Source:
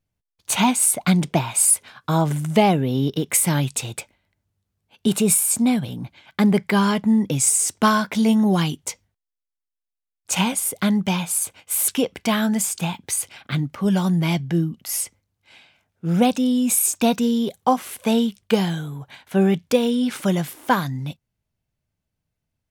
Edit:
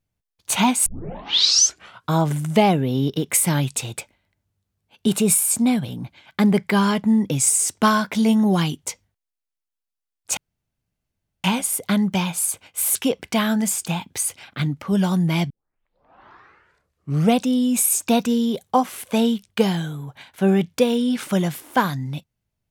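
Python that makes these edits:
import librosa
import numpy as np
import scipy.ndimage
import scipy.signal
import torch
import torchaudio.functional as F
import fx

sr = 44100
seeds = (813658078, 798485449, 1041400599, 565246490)

y = fx.edit(x, sr, fx.tape_start(start_s=0.86, length_s=1.24),
    fx.insert_room_tone(at_s=10.37, length_s=1.07),
    fx.tape_start(start_s=14.43, length_s=1.9), tone=tone)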